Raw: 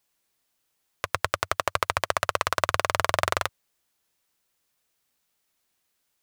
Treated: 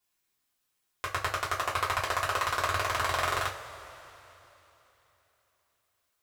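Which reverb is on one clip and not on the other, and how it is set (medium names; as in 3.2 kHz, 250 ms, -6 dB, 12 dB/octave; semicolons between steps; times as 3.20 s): two-slope reverb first 0.24 s, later 3.5 s, from -22 dB, DRR -6 dB; trim -10 dB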